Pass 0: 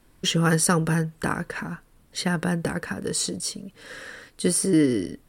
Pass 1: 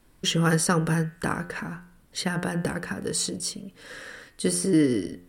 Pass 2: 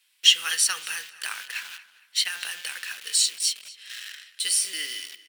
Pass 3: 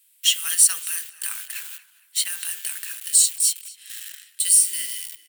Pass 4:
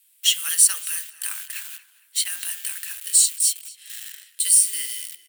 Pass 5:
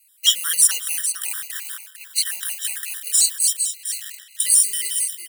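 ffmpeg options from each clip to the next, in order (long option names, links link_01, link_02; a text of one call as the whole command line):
ffmpeg -i in.wav -filter_complex "[0:a]bandreject=frequency=88.3:width_type=h:width=4,bandreject=frequency=176.6:width_type=h:width=4,bandreject=frequency=264.9:width_type=h:width=4,bandreject=frequency=353.2:width_type=h:width=4,bandreject=frequency=441.5:width_type=h:width=4,bandreject=frequency=529.8:width_type=h:width=4,bandreject=frequency=618.1:width_type=h:width=4,bandreject=frequency=706.4:width_type=h:width=4,bandreject=frequency=794.7:width_type=h:width=4,bandreject=frequency=883:width_type=h:width=4,bandreject=frequency=971.3:width_type=h:width=4,bandreject=frequency=1059.6:width_type=h:width=4,bandreject=frequency=1147.9:width_type=h:width=4,bandreject=frequency=1236.2:width_type=h:width=4,bandreject=frequency=1324.5:width_type=h:width=4,bandreject=frequency=1412.8:width_type=h:width=4,bandreject=frequency=1501.1:width_type=h:width=4,bandreject=frequency=1589.4:width_type=h:width=4,bandreject=frequency=1677.7:width_type=h:width=4,bandreject=frequency=1766:width_type=h:width=4,bandreject=frequency=1854.3:width_type=h:width=4,bandreject=frequency=1942.6:width_type=h:width=4,bandreject=frequency=2030.9:width_type=h:width=4,bandreject=frequency=2119.2:width_type=h:width=4,bandreject=frequency=2207.5:width_type=h:width=4,bandreject=frequency=2295.8:width_type=h:width=4,bandreject=frequency=2384.1:width_type=h:width=4,bandreject=frequency=2472.4:width_type=h:width=4,bandreject=frequency=2560.7:width_type=h:width=4,bandreject=frequency=2649:width_type=h:width=4,bandreject=frequency=2737.3:width_type=h:width=4,bandreject=frequency=2825.6:width_type=h:width=4,bandreject=frequency=2913.9:width_type=h:width=4,bandreject=frequency=3002.2:width_type=h:width=4,bandreject=frequency=3090.5:width_type=h:width=4,bandreject=frequency=3178.8:width_type=h:width=4,bandreject=frequency=3267.1:width_type=h:width=4,acrossover=split=6900[link_01][link_02];[link_02]alimiter=limit=-18.5dB:level=0:latency=1:release=207[link_03];[link_01][link_03]amix=inputs=2:normalize=0,volume=-1dB" out.wav
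ffmpeg -i in.wav -filter_complex "[0:a]asplit=2[link_01][link_02];[link_02]acrusher=bits=5:mix=0:aa=0.000001,volume=-3dB[link_03];[link_01][link_03]amix=inputs=2:normalize=0,highpass=frequency=2800:width_type=q:width=2.3,asplit=2[link_04][link_05];[link_05]adelay=231,lowpass=frequency=4600:poles=1,volume=-16.5dB,asplit=2[link_06][link_07];[link_07]adelay=231,lowpass=frequency=4600:poles=1,volume=0.36,asplit=2[link_08][link_09];[link_09]adelay=231,lowpass=frequency=4600:poles=1,volume=0.36[link_10];[link_04][link_06][link_08][link_10]amix=inputs=4:normalize=0" out.wav
ffmpeg -i in.wav -af "highshelf=frequency=3500:gain=7,aexciter=amount=4:drive=4.6:freq=7300,volume=-7dB" out.wav
ffmpeg -i in.wav -af "afreqshift=21" out.wav
ffmpeg -i in.wav -af "aecho=1:1:451:0.316,acontrast=69,afftfilt=real='re*gt(sin(2*PI*5.6*pts/sr)*(1-2*mod(floor(b*sr/1024/980),2)),0)':imag='im*gt(sin(2*PI*5.6*pts/sr)*(1-2*mod(floor(b*sr/1024/980),2)),0)':win_size=1024:overlap=0.75,volume=-1dB" out.wav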